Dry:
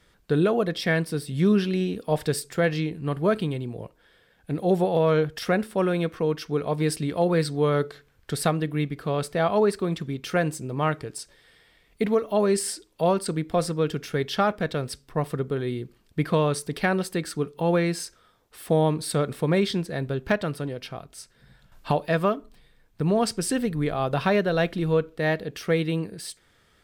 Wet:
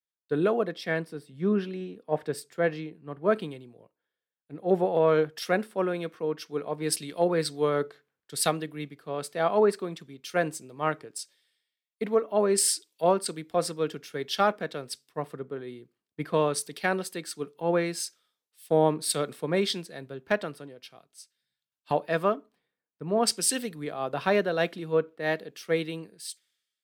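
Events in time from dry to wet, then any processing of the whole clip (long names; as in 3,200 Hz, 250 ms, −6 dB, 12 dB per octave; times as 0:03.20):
0:00.74–0:03.22: high-shelf EQ 3,000 Hz −8 dB
whole clip: high-pass filter 230 Hz 12 dB per octave; multiband upward and downward expander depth 100%; level −3 dB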